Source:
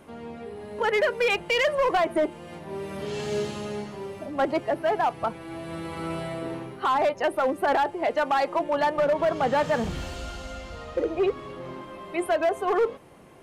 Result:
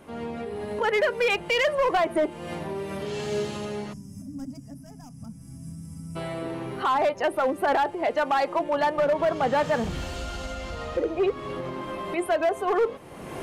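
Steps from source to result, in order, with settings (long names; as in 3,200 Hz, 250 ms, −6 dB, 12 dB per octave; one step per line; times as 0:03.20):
camcorder AGC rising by 32 dB per second
gain on a spectral selection 0:03.93–0:06.16, 280–4,800 Hz −29 dB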